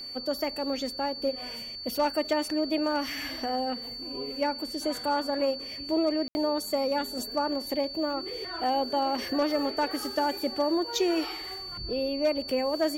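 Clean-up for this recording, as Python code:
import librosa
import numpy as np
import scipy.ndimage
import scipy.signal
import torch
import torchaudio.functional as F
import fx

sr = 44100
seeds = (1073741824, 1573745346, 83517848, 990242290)

y = fx.fix_declip(x, sr, threshold_db=-18.0)
y = fx.notch(y, sr, hz=4500.0, q=30.0)
y = fx.fix_ambience(y, sr, seeds[0], print_start_s=1.36, print_end_s=1.86, start_s=6.28, end_s=6.35)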